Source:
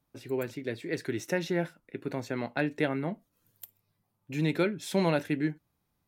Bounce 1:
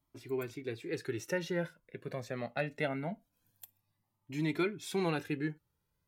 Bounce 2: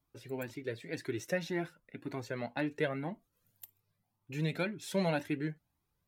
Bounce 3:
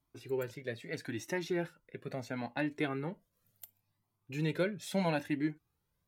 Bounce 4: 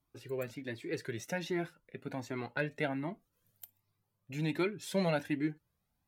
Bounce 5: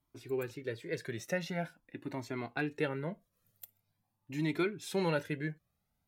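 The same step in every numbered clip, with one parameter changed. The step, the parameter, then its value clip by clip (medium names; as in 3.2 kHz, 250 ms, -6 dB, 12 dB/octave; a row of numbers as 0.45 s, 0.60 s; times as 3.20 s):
Shepard-style flanger, rate: 0.23 Hz, 1.9 Hz, 0.74 Hz, 1.3 Hz, 0.45 Hz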